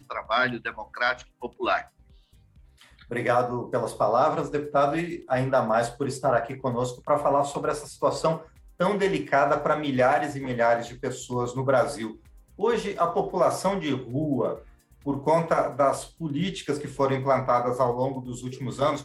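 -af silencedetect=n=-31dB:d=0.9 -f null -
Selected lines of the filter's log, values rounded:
silence_start: 1.81
silence_end: 3.11 | silence_duration: 1.30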